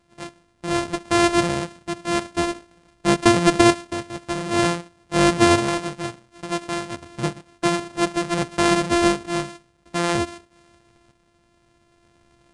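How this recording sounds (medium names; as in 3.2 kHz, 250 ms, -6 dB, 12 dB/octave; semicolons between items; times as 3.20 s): a buzz of ramps at a fixed pitch in blocks of 128 samples; tremolo saw up 0.54 Hz, depth 55%; Vorbis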